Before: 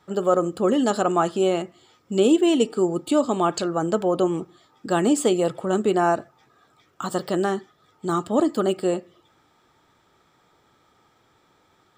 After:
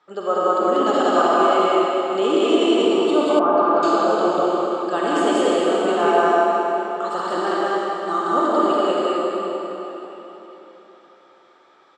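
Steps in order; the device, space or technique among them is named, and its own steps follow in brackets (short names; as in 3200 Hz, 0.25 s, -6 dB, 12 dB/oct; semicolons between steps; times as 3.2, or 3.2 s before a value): station announcement (BPF 390–4700 Hz; bell 1200 Hz +5 dB 0.23 oct; loudspeakers at several distances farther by 54 m -10 dB, 65 m 0 dB; reverb RT60 3.9 s, pre-delay 35 ms, DRR -5 dB); 3.39–3.83 Chebyshev low-pass 1400 Hz, order 2; gain -2.5 dB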